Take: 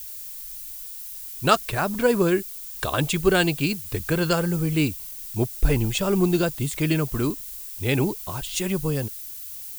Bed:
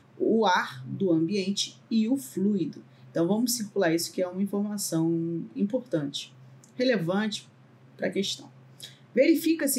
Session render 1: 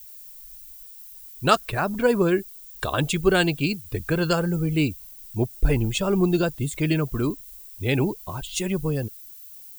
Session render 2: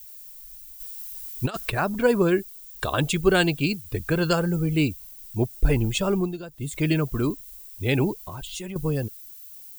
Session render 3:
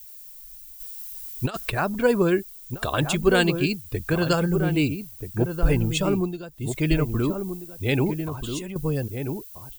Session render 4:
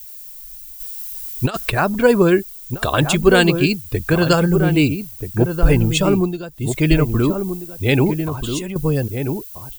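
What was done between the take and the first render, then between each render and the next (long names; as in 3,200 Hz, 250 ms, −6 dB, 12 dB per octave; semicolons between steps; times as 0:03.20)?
broadband denoise 10 dB, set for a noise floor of −37 dBFS
0:00.80–0:01.70: compressor whose output falls as the input rises −24 dBFS, ratio −0.5; 0:06.08–0:06.79: duck −15 dB, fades 0.29 s; 0:08.23–0:08.76: downward compressor, threshold −31 dBFS
slap from a distant wall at 220 metres, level −7 dB
level +7 dB; brickwall limiter −1 dBFS, peak gain reduction 1 dB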